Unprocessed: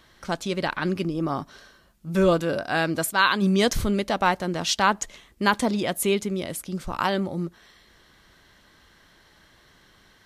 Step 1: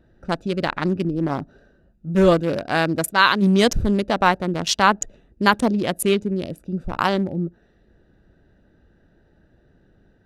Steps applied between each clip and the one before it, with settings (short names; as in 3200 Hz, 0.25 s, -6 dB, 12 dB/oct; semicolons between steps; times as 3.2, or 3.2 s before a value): Wiener smoothing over 41 samples; gain +5 dB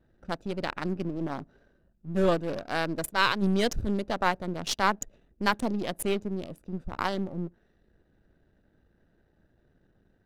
half-wave gain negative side -7 dB; gain -6.5 dB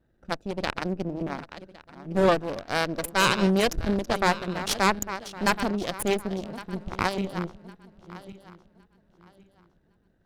regenerating reverse delay 0.555 s, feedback 53%, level -11 dB; added harmonics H 6 -9 dB, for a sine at -7 dBFS; gain -2.5 dB